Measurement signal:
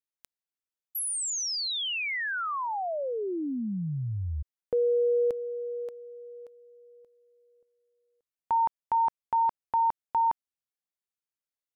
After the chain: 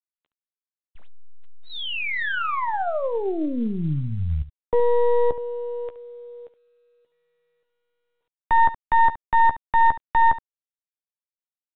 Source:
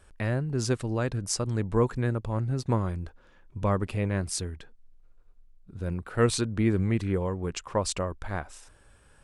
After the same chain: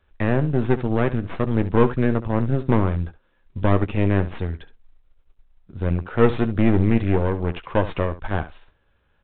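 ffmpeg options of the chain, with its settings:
ffmpeg -i in.wav -filter_complex "[0:a]aeval=exprs='0.299*(cos(1*acos(clip(val(0)/0.299,-1,1)))-cos(1*PI/2))+0.00266*(cos(2*acos(clip(val(0)/0.299,-1,1)))-cos(2*PI/2))+0.0376*(cos(4*acos(clip(val(0)/0.299,-1,1)))-cos(4*PI/2))+0.00596*(cos(6*acos(clip(val(0)/0.299,-1,1)))-cos(6*PI/2))+0.0266*(cos(8*acos(clip(val(0)/0.299,-1,1)))-cos(8*PI/2))':channel_layout=same,agate=range=-14dB:threshold=-47dB:ratio=3:release=50:detection=peak,acrossover=split=500|970[link_01][link_02][link_03];[link_03]asoftclip=type=tanh:threshold=-24.5dB[link_04];[link_01][link_02][link_04]amix=inputs=3:normalize=0,acrossover=split=2800[link_05][link_06];[link_06]acompressor=threshold=-44dB:ratio=4:attack=1:release=60[link_07];[link_05][link_07]amix=inputs=2:normalize=0,asplit=2[link_08][link_09];[link_09]aecho=0:1:13|70:0.316|0.188[link_10];[link_08][link_10]amix=inputs=2:normalize=0,volume=5.5dB" -ar 8000 -c:a pcm_mulaw out.wav

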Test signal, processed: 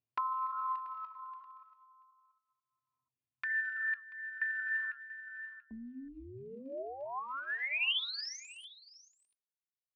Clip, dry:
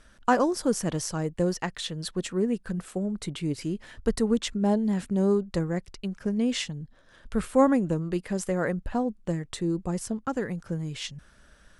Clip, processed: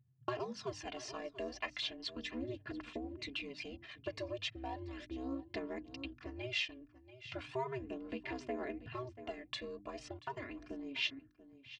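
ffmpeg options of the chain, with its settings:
ffmpeg -i in.wav -af "agate=range=-20dB:threshold=-51dB:ratio=16:detection=peak,flanger=delay=1.7:depth=4.3:regen=87:speed=1.1:shape=sinusoidal,anlmdn=0.001,acompressor=mode=upward:threshold=-51dB:ratio=2.5,aeval=exprs='val(0)*sin(2*PI*130*n/s)':channel_layout=same,aphaser=in_gain=1:out_gain=1:delay=1.8:decay=0.49:speed=0.36:type=sinusoidal,equalizer=frequency=350:width=2.2:gain=-9,bandreject=frequency=50:width_type=h:width=6,bandreject=frequency=100:width_type=h:width=6,bandreject=frequency=150:width_type=h:width=6,bandreject=frequency=200:width_type=h:width=6,bandreject=frequency=250:width_type=h:width=6,bandreject=frequency=300:width_type=h:width=6,aecho=1:1:685:0.106,acompressor=threshold=-38dB:ratio=3,highpass=200,equalizer=frequency=310:width_type=q:width=4:gain=-3,equalizer=frequency=690:width_type=q:width=4:gain=-7,equalizer=frequency=1400:width_type=q:width=4:gain=-7,equalizer=frequency=2600:width_type=q:width=4:gain=8,lowpass=frequency=4700:width=0.5412,lowpass=frequency=4700:width=1.3066,aecho=1:1:2.9:0.83,volume=2dB" out.wav

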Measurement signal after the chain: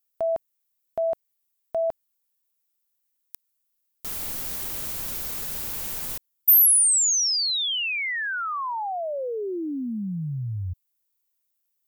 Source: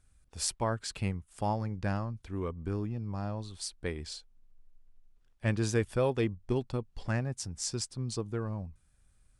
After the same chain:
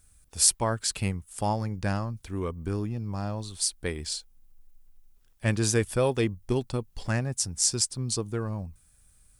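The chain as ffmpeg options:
ffmpeg -i in.wav -af "aemphasis=mode=production:type=50fm,volume=4dB" out.wav

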